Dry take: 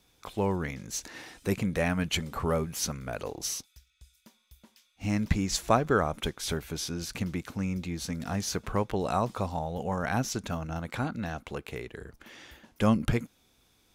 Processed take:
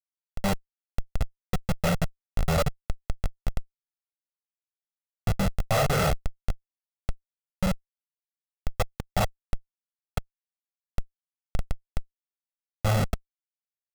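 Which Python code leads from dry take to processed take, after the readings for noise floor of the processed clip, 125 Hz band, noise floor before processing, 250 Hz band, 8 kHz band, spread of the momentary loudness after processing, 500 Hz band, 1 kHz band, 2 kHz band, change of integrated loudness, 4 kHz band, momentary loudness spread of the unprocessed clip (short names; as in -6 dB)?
under -85 dBFS, +2.0 dB, -69 dBFS, -4.0 dB, -5.5 dB, 16 LU, -1.5 dB, -1.0 dB, -0.5 dB, +1.0 dB, -2.0 dB, 12 LU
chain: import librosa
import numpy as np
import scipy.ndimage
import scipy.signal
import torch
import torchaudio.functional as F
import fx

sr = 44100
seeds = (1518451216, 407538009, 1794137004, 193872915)

p1 = fx.spec_steps(x, sr, hold_ms=50)
p2 = scipy.signal.sosfilt(scipy.signal.butter(4, 59.0, 'highpass', fs=sr, output='sos'), p1)
p3 = fx.air_absorb(p2, sr, metres=73.0)
p4 = p3 + fx.echo_single(p3, sr, ms=279, db=-18.5, dry=0)
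p5 = fx.room_shoebox(p4, sr, seeds[0], volume_m3=640.0, walls='furnished', distance_m=4.8)
p6 = fx.level_steps(p5, sr, step_db=20)
p7 = fx.peak_eq(p6, sr, hz=280.0, db=-9.0, octaves=0.54)
p8 = fx.notch(p7, sr, hz=6100.0, q=7.0)
p9 = fx.schmitt(p8, sr, flips_db=-31.5)
p10 = p9 + 0.65 * np.pad(p9, (int(1.5 * sr / 1000.0), 0))[:len(p9)]
y = F.gain(torch.from_numpy(p10), 7.0).numpy()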